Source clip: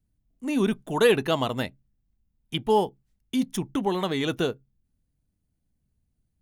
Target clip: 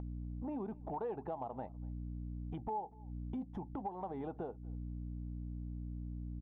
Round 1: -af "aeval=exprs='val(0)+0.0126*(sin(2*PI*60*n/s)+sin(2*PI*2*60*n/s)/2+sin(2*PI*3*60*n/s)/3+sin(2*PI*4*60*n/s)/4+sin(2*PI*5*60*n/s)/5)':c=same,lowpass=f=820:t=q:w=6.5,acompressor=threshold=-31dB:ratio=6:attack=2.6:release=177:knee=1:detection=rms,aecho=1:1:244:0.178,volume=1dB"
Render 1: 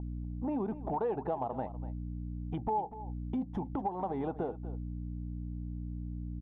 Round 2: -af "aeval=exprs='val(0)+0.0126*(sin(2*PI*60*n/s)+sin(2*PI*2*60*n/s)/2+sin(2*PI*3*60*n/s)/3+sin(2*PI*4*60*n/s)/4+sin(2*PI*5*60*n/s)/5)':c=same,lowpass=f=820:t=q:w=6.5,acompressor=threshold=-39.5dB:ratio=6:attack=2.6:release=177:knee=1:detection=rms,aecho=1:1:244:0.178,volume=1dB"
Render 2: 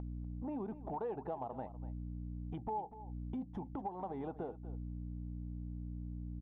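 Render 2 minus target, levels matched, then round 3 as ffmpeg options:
echo-to-direct +10 dB
-af "aeval=exprs='val(0)+0.0126*(sin(2*PI*60*n/s)+sin(2*PI*2*60*n/s)/2+sin(2*PI*3*60*n/s)/3+sin(2*PI*4*60*n/s)/4+sin(2*PI*5*60*n/s)/5)':c=same,lowpass=f=820:t=q:w=6.5,acompressor=threshold=-39.5dB:ratio=6:attack=2.6:release=177:knee=1:detection=rms,aecho=1:1:244:0.0562,volume=1dB"

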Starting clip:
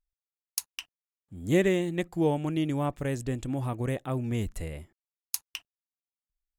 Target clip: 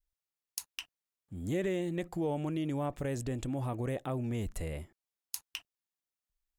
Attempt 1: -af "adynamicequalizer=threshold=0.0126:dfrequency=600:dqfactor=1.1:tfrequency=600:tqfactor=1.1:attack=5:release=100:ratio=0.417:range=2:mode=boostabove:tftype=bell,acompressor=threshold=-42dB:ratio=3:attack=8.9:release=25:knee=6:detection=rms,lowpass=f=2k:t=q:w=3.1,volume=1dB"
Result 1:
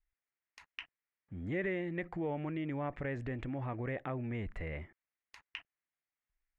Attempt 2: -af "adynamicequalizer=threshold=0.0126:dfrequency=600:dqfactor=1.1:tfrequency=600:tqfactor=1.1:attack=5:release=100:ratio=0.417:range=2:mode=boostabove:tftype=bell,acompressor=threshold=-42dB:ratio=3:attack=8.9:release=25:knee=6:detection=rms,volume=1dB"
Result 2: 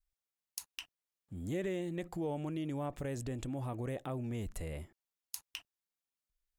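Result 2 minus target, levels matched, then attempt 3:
compressor: peak gain reduction +4 dB
-af "adynamicequalizer=threshold=0.0126:dfrequency=600:dqfactor=1.1:tfrequency=600:tqfactor=1.1:attack=5:release=100:ratio=0.417:range=2:mode=boostabove:tftype=bell,acompressor=threshold=-36dB:ratio=3:attack=8.9:release=25:knee=6:detection=rms,volume=1dB"

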